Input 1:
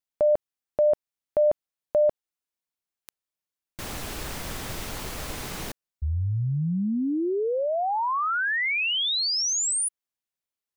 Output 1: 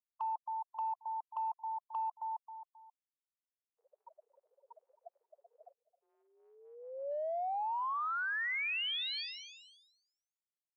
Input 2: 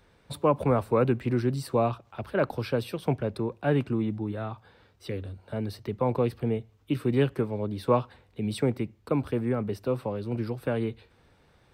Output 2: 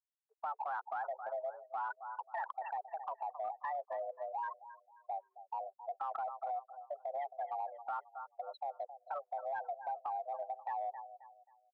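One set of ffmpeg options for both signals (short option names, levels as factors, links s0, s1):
-af "afftfilt=real='re*gte(hypot(re,im),0.0794)':imag='im*gte(hypot(re,im),0.0794)':win_size=1024:overlap=0.75,alimiter=limit=0.0944:level=0:latency=1:release=66,highpass=f=470:t=q:w=0.5412,highpass=f=470:t=q:w=1.307,lowpass=f=2800:t=q:w=0.5176,lowpass=f=2800:t=q:w=0.7071,lowpass=f=2800:t=q:w=1.932,afreqshift=290,aecho=1:1:267|534|801:0.112|0.0359|0.0115,acompressor=threshold=0.01:ratio=10:attack=1:release=35:knee=1:detection=peak,volume=1.88"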